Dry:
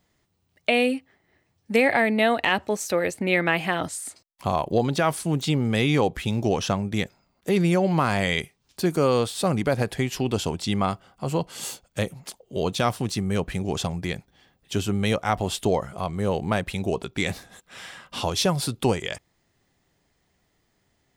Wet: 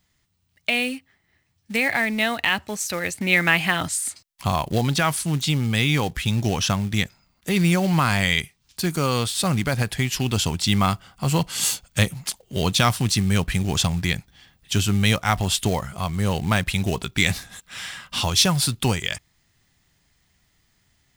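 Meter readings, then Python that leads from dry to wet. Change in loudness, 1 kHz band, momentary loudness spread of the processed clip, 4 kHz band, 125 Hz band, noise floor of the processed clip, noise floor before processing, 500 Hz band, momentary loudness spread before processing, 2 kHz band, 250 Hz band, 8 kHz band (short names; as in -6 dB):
+2.5 dB, +0.5 dB, 9 LU, +7.0 dB, +5.0 dB, -68 dBFS, -70 dBFS, -4.5 dB, 11 LU, +4.5 dB, +1.0 dB, +8.5 dB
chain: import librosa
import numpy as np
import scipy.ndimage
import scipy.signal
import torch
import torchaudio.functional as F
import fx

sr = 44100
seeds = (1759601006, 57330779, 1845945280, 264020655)

p1 = fx.quant_float(x, sr, bits=2)
p2 = x + F.gain(torch.from_numpy(p1), -3.5).numpy()
p3 = fx.rider(p2, sr, range_db=10, speed_s=2.0)
p4 = fx.peak_eq(p3, sr, hz=470.0, db=-13.0, octaves=2.2)
y = F.gain(torch.from_numpy(p4), 2.5).numpy()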